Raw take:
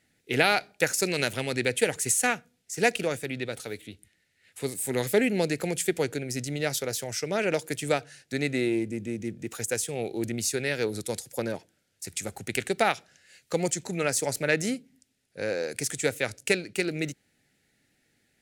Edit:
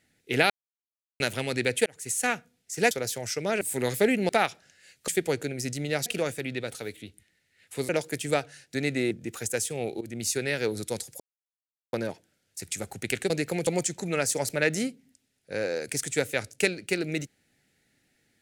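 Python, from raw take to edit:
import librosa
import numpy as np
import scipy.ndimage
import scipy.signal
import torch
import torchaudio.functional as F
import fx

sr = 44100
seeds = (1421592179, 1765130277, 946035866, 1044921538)

y = fx.edit(x, sr, fx.silence(start_s=0.5, length_s=0.7),
    fx.fade_in_span(start_s=1.86, length_s=0.49),
    fx.swap(start_s=2.91, length_s=1.83, other_s=6.77, other_length_s=0.7),
    fx.swap(start_s=5.42, length_s=0.37, other_s=12.75, other_length_s=0.79),
    fx.cut(start_s=8.69, length_s=0.6),
    fx.fade_in_from(start_s=10.19, length_s=0.27, floor_db=-16.5),
    fx.insert_silence(at_s=11.38, length_s=0.73), tone=tone)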